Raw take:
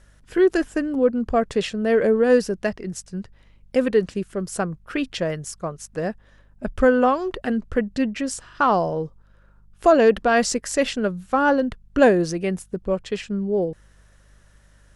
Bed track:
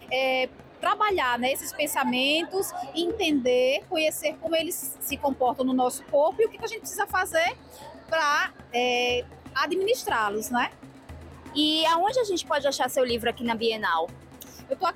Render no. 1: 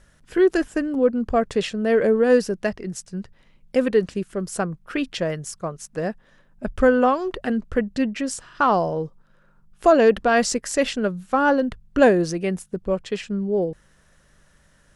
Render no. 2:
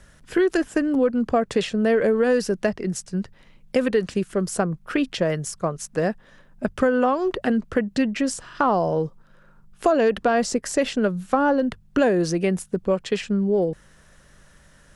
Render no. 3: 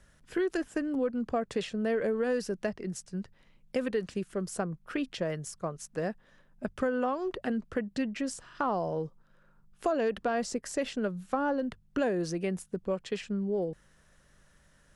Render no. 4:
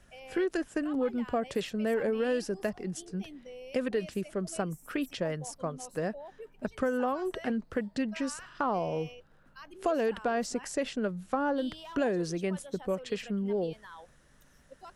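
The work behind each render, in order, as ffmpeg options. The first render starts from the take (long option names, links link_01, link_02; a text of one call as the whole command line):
ffmpeg -i in.wav -af "bandreject=frequency=50:width_type=h:width=4,bandreject=frequency=100:width_type=h:width=4" out.wav
ffmpeg -i in.wav -filter_complex "[0:a]asplit=2[link_01][link_02];[link_02]alimiter=limit=-11dB:level=0:latency=1,volume=-2.5dB[link_03];[link_01][link_03]amix=inputs=2:normalize=0,acrossover=split=97|970[link_04][link_05][link_06];[link_04]acompressor=threshold=-46dB:ratio=4[link_07];[link_05]acompressor=threshold=-18dB:ratio=4[link_08];[link_06]acompressor=threshold=-29dB:ratio=4[link_09];[link_07][link_08][link_09]amix=inputs=3:normalize=0" out.wav
ffmpeg -i in.wav -af "volume=-10dB" out.wav
ffmpeg -i in.wav -i bed.wav -filter_complex "[1:a]volume=-24dB[link_01];[0:a][link_01]amix=inputs=2:normalize=0" out.wav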